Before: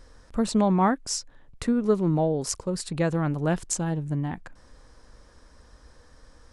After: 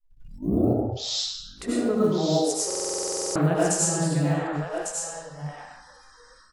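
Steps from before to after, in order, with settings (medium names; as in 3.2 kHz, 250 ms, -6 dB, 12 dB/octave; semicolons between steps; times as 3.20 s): tape start-up on the opening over 1.53 s; algorithmic reverb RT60 1 s, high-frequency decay 0.9×, pre-delay 55 ms, DRR -7 dB; level rider gain up to 9 dB; on a send: delay 1150 ms -6.5 dB; on the sum: companded quantiser 8-bit; spectral noise reduction 20 dB; dynamic bell 8.8 kHz, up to +6 dB, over -40 dBFS, Q 1.2; buffer glitch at 2.66 s, samples 2048, times 14; trim -8.5 dB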